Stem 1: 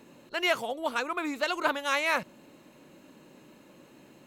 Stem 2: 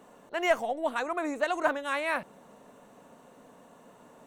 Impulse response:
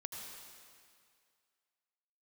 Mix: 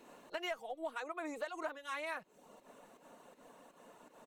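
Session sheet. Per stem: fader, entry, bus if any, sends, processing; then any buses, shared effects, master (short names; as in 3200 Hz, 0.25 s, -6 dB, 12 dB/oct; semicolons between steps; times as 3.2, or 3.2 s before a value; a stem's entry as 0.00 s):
-5.5 dB, 0.00 s, no send, auto duck -9 dB, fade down 1.10 s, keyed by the second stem
-1.5 dB, 6.5 ms, no send, pump 81 bpm, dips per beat 2, -11 dB, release 0.14 s; reverb removal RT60 0.55 s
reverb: off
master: bell 110 Hz -9.5 dB 2.4 oct; compressor 6:1, threshold -38 dBFS, peak gain reduction 17 dB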